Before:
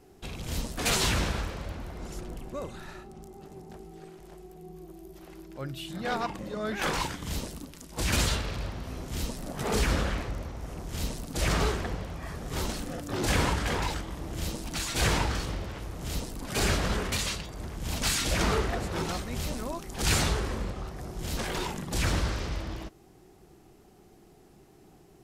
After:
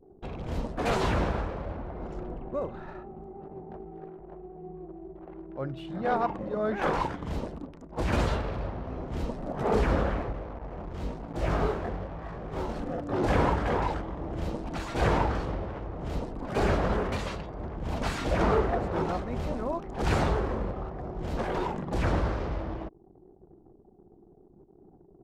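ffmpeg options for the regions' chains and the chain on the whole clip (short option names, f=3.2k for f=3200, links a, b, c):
-filter_complex "[0:a]asettb=1/sr,asplit=3[a][b][c];[a]atrim=end=10.324[d];[b]atrim=start=10.32:end=12.76,asetpts=PTS-STARTPTS,afade=t=in:d=0.004:c=qsin,afade=t=out:st=2.436:d=0.004:c=qsin,flanger=delay=17.5:depth=5.9:speed=1,acrusher=bits=6:mix=0:aa=0.5[e];[c]atrim=start=12.756[f];[d][e]acrossfade=d=0.004:c1=hsin:c2=qsin[g];[g][f]acrossfade=d=0.004:c1=qsin:c2=hsin,lowpass=f=1k:p=1,anlmdn=0.001,equalizer=f=710:t=o:w=2.4:g=7.5"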